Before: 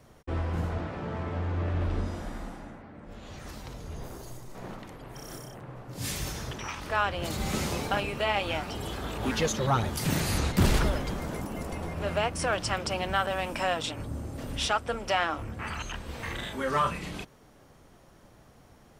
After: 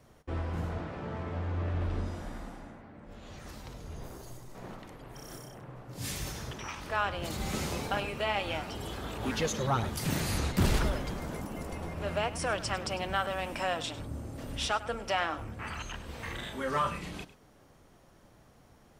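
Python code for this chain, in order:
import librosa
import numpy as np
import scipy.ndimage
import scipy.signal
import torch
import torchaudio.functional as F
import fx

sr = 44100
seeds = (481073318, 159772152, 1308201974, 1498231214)

y = x + 10.0 ** (-15.5 / 20.0) * np.pad(x, (int(101 * sr / 1000.0), 0))[:len(x)]
y = F.gain(torch.from_numpy(y), -3.5).numpy()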